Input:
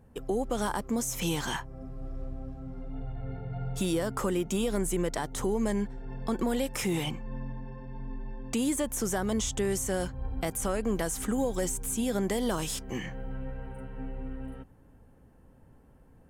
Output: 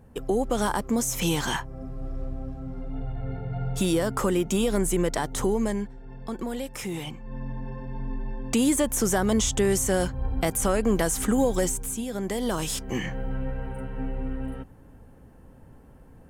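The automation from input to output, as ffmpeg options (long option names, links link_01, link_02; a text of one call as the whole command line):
ffmpeg -i in.wav -af "volume=25dB,afade=type=out:start_time=5.46:duration=0.47:silence=0.398107,afade=type=in:start_time=7.17:duration=0.52:silence=0.334965,afade=type=out:start_time=11.55:duration=0.52:silence=0.316228,afade=type=in:start_time=12.07:duration=1.08:silence=0.298538" out.wav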